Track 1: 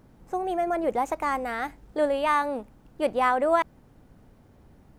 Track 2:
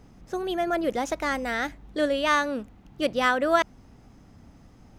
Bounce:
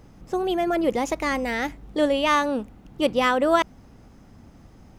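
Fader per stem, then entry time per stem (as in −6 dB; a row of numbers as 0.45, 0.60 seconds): −1.0, +1.5 decibels; 0.00, 0.00 seconds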